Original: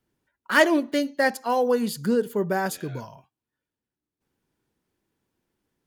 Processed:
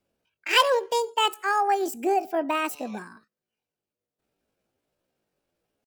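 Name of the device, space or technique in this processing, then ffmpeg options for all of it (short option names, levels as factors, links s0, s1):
chipmunk voice: -af "asetrate=72056,aresample=44100,atempo=0.612027,volume=0.891"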